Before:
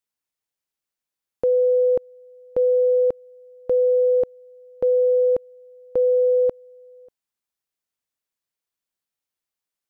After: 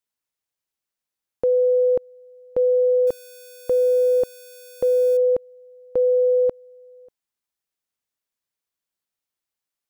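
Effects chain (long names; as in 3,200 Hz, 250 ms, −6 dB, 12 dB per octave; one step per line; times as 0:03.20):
0:03.07–0:05.17: spike at every zero crossing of −31 dBFS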